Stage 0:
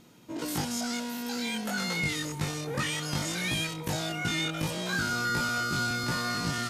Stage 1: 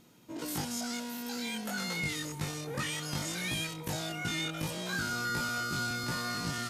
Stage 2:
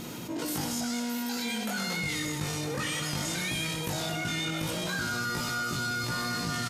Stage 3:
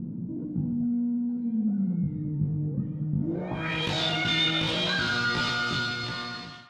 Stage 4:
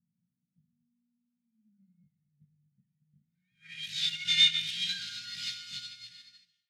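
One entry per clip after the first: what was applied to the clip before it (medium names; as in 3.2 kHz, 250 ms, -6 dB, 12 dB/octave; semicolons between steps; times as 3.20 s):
treble shelf 10 kHz +5.5 dB; trim -4.5 dB
on a send: loudspeakers at several distances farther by 26 m -11 dB, 43 m -11 dB, 76 m -11 dB; on the sum: level flattener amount 70%
fade out at the end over 1.06 s; low-pass sweep 200 Hz -> 3.6 kHz, 3.18–3.85 s; band-passed feedback delay 148 ms, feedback 48%, band-pass 1.3 kHz, level -9 dB; trim +3 dB
inverse Chebyshev band-stop 320–1100 Hz, stop band 40 dB; RIAA curve recording; upward expansion 2.5:1, over -41 dBFS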